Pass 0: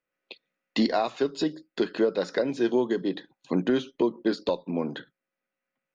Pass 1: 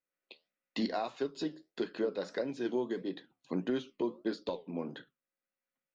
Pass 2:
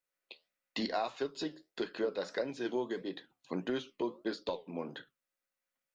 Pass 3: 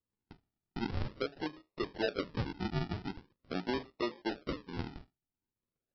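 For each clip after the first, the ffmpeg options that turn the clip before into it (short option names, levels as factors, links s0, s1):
-af "flanger=delay=7.4:depth=6.3:regen=-74:speed=1.6:shape=sinusoidal,volume=0.562"
-af "equalizer=f=220:t=o:w=2:g=-6.5,volume=1.33"
-filter_complex "[0:a]acrossover=split=3500[s0][s1];[s1]acompressor=threshold=0.00126:ratio=4:attack=1:release=60[s2];[s0][s2]amix=inputs=2:normalize=0,aresample=11025,acrusher=samples=14:mix=1:aa=0.000001:lfo=1:lforange=14:lforate=0.44,aresample=44100"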